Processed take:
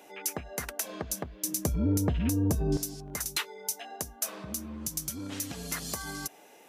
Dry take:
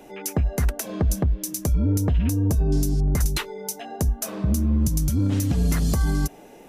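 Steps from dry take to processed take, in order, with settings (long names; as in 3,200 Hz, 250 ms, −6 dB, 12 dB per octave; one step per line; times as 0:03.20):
high-pass filter 930 Hz 6 dB per octave, from 0:01.44 160 Hz, from 0:02.77 1,200 Hz
level −1.5 dB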